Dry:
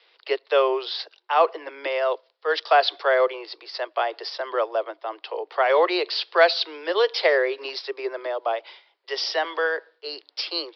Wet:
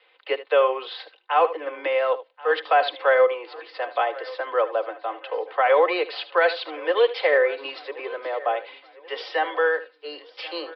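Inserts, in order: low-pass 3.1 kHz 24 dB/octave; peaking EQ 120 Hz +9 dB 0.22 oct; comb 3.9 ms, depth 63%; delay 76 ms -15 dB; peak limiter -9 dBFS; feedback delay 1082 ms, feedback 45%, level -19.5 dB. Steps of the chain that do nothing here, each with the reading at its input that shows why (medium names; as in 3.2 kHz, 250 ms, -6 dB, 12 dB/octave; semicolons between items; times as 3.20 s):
peaking EQ 120 Hz: input has nothing below 290 Hz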